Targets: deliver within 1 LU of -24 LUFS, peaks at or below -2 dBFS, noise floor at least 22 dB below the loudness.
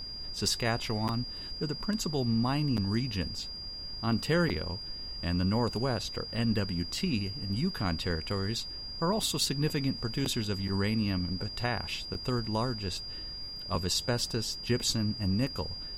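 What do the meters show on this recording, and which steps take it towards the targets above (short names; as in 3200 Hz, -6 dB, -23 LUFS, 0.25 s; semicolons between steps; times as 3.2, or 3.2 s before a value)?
steady tone 4800 Hz; tone level -39 dBFS; noise floor -41 dBFS; noise floor target -54 dBFS; loudness -31.5 LUFS; peak -15.0 dBFS; loudness target -24.0 LUFS
-> notch 4800 Hz, Q 30; noise print and reduce 13 dB; gain +7.5 dB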